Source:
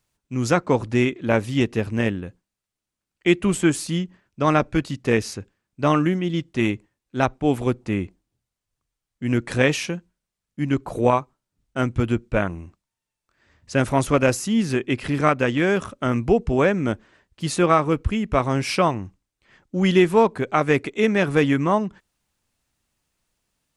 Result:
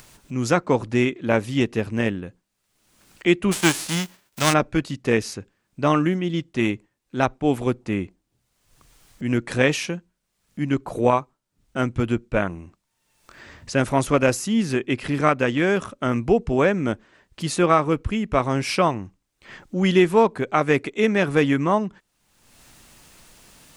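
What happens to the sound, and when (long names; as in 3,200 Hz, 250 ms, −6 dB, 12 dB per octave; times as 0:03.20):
0:03.51–0:04.52: spectral envelope flattened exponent 0.3
whole clip: upward compression, threshold −29 dBFS; parametric band 65 Hz −5.5 dB 1.4 octaves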